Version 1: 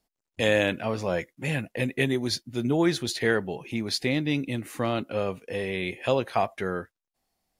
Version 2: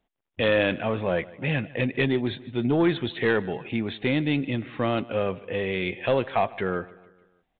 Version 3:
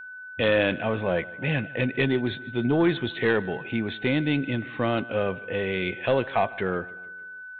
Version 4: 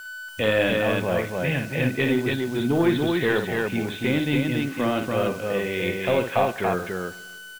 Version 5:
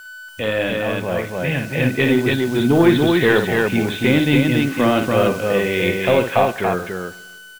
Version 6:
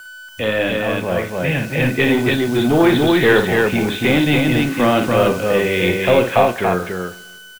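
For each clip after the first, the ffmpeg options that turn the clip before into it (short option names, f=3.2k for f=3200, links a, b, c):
-af "aresample=8000,asoftclip=type=tanh:threshold=-16dB,aresample=44100,aecho=1:1:151|302|453|604:0.0891|0.0463|0.0241|0.0125,volume=3dB"
-af "aeval=exprs='val(0)+0.0126*sin(2*PI*1500*n/s)':c=same"
-filter_complex "[0:a]acrusher=bits=8:dc=4:mix=0:aa=0.000001,asplit=2[a][b];[b]aecho=0:1:55.39|285.7:0.447|0.708[c];[a][c]amix=inputs=2:normalize=0"
-af "dynaudnorm=f=490:g=7:m=11.5dB"
-filter_complex "[0:a]acrossover=split=410|600|4000[a][b][c][d];[a]asoftclip=type=hard:threshold=-17.5dB[e];[e][b][c][d]amix=inputs=4:normalize=0,asplit=2[f][g];[g]adelay=33,volume=-12dB[h];[f][h]amix=inputs=2:normalize=0,volume=2dB"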